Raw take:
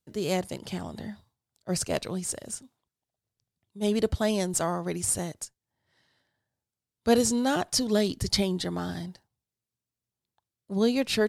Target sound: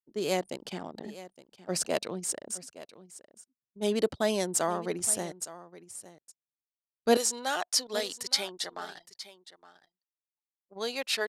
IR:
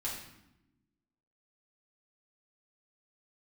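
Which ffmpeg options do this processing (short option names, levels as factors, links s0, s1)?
-af "asetnsamples=n=441:p=0,asendcmd='7.17 highpass f 740',highpass=260,anlmdn=0.251,aecho=1:1:865:0.15"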